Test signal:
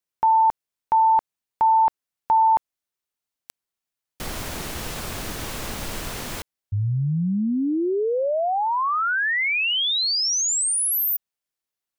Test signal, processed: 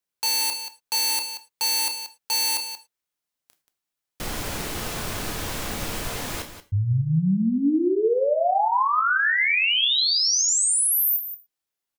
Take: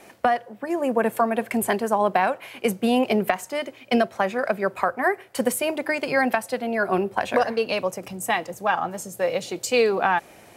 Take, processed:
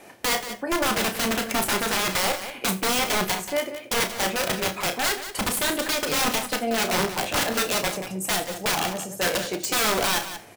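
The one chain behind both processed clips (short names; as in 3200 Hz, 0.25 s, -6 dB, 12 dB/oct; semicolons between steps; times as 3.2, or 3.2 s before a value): wrapped overs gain 18.5 dB; on a send: loudspeakers at several distances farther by 11 m -9 dB, 62 m -11 dB; on the sum: non-linear reverb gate 0.13 s falling, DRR 9 dB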